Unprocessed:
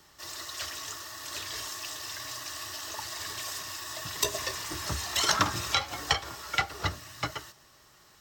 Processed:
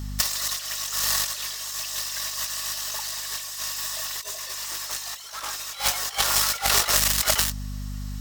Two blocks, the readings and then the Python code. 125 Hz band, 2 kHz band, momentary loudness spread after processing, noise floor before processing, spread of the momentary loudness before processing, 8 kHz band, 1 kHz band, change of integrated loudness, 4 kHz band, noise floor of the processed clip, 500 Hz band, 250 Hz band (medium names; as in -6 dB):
+3.0 dB, +3.5 dB, 11 LU, -59 dBFS, 11 LU, +10.5 dB, +2.0 dB, +7.5 dB, +6.0 dB, -37 dBFS, +2.0 dB, +0.5 dB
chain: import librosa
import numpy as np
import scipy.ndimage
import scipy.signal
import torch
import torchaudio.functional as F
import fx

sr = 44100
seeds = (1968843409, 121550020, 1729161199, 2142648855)

p1 = fx.fuzz(x, sr, gain_db=44.0, gate_db=-42.0)
p2 = x + (p1 * 10.0 ** (-4.0 / 20.0))
p3 = scipy.signal.sosfilt(scipy.signal.butter(4, 480.0, 'highpass', fs=sr, output='sos'), p2)
p4 = fx.add_hum(p3, sr, base_hz=50, snr_db=16)
p5 = fx.high_shelf(p4, sr, hz=3200.0, db=10.0)
p6 = fx.over_compress(p5, sr, threshold_db=-22.0, ratio=-0.5)
y = p6 * 10.0 ** (-3.5 / 20.0)